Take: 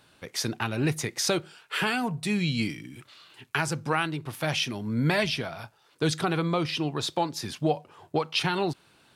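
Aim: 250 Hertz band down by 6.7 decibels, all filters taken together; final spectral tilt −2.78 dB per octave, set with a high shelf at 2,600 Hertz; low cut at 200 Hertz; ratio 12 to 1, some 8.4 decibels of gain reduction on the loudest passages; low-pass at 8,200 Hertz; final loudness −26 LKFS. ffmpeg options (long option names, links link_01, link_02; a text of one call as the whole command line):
ffmpeg -i in.wav -af "highpass=200,lowpass=8200,equalizer=frequency=250:width_type=o:gain=-7,highshelf=frequency=2600:gain=4,acompressor=threshold=-29dB:ratio=12,volume=8.5dB" out.wav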